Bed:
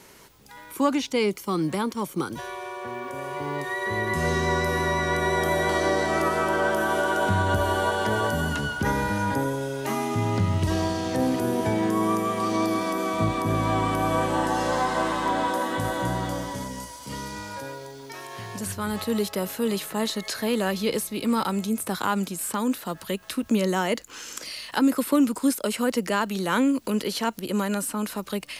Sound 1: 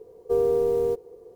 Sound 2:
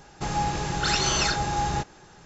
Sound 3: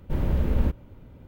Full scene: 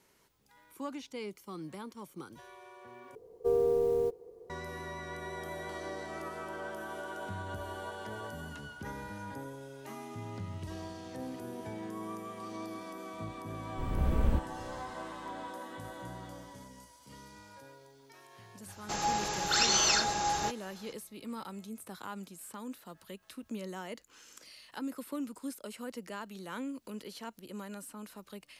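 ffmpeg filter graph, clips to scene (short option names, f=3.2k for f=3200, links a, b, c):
-filter_complex "[0:a]volume=-17.5dB[a];[3:a]dynaudnorm=f=120:g=5:m=11.5dB[b];[2:a]bass=f=250:g=-12,treble=f=4k:g=5[c];[a]asplit=2[d][e];[d]atrim=end=3.154[f];[1:a]atrim=end=1.35,asetpts=PTS-STARTPTS,volume=-5.5dB[g];[e]atrim=start=4.496[h];[b]atrim=end=1.27,asetpts=PTS-STARTPTS,volume=-13dB,afade=t=in:d=0.004:c=hsin,afade=t=out:st=1.266:d=0.004:c=hsin,adelay=13680[i];[c]atrim=end=2.25,asetpts=PTS-STARTPTS,volume=-4dB,afade=t=in:d=0.004:c=hsin,afade=t=out:st=2.246:d=0.004:c=hsin,adelay=18680[j];[f][g]acrossfade=d=0.004:c1=hsin:c2=hsin[k];[k][h]acrossfade=d=0.004:c1=hsin:c2=hsin[l];[l][i][j]amix=inputs=3:normalize=0"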